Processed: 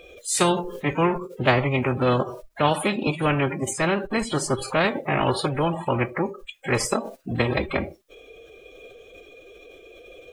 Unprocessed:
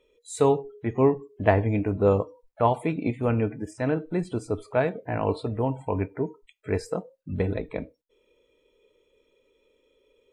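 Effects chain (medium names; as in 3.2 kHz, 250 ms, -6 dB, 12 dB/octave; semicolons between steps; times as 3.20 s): formant-preserving pitch shift +4 st; spectrum-flattening compressor 2:1; trim +1 dB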